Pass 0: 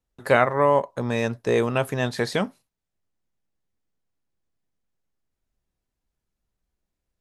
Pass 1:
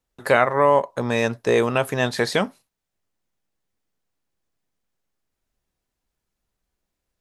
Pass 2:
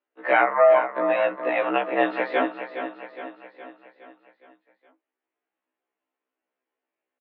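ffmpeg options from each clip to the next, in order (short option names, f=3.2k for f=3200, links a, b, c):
-filter_complex "[0:a]lowshelf=f=270:g=-6,asplit=2[a][b];[b]alimiter=limit=-13dB:level=0:latency=1:release=165,volume=0dB[c];[a][c]amix=inputs=2:normalize=0,volume=-1dB"
-af "aecho=1:1:415|830|1245|1660|2075|2490:0.335|0.178|0.0941|0.0499|0.0264|0.014,highpass=f=220:t=q:w=0.5412,highpass=f=220:t=q:w=1.307,lowpass=f=2.8k:t=q:w=0.5176,lowpass=f=2.8k:t=q:w=0.7071,lowpass=f=2.8k:t=q:w=1.932,afreqshift=69,afftfilt=real='re*1.73*eq(mod(b,3),0)':imag='im*1.73*eq(mod(b,3),0)':win_size=2048:overlap=0.75,volume=1.5dB"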